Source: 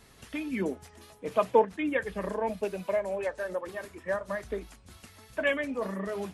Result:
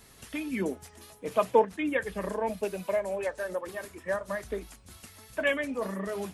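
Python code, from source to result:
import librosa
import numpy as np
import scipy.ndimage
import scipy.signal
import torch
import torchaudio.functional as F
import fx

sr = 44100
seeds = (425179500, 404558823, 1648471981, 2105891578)

y = fx.high_shelf(x, sr, hz=7200.0, db=9.0)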